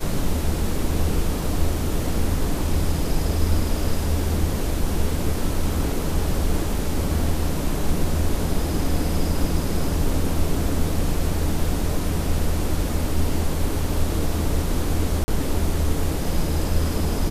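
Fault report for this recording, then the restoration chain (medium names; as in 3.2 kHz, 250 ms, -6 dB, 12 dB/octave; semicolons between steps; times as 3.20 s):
11.15 s: dropout 2.7 ms
15.24–15.28 s: dropout 40 ms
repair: interpolate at 11.15 s, 2.7 ms; interpolate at 15.24 s, 40 ms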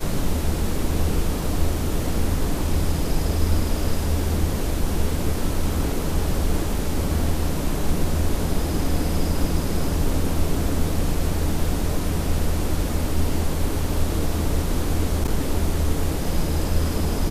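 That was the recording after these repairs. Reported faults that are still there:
nothing left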